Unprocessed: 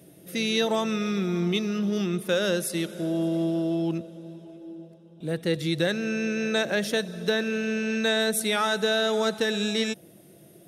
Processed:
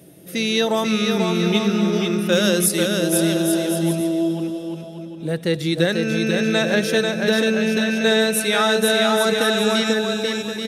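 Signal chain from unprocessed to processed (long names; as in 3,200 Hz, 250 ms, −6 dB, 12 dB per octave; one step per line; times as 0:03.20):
0:02.32–0:03.79: high-shelf EQ 4,800 Hz +9.5 dB
bouncing-ball delay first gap 490 ms, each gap 0.7×, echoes 5
level +5 dB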